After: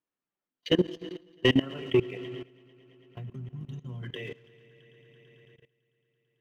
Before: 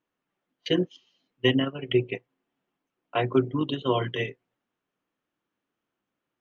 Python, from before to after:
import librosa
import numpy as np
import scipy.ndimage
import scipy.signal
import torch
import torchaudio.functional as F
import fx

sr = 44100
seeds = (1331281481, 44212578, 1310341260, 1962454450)

p1 = fx.spec_box(x, sr, start_s=2.93, length_s=1.11, low_hz=250.0, high_hz=5100.0, gain_db=-25)
p2 = fx.rev_schroeder(p1, sr, rt60_s=2.7, comb_ms=27, drr_db=14.5)
p3 = fx.leveller(p2, sr, passes=1)
p4 = p3 + fx.echo_heads(p3, sr, ms=111, heads='first and third', feedback_pct=72, wet_db=-21.0, dry=0)
y = fx.level_steps(p4, sr, step_db=19)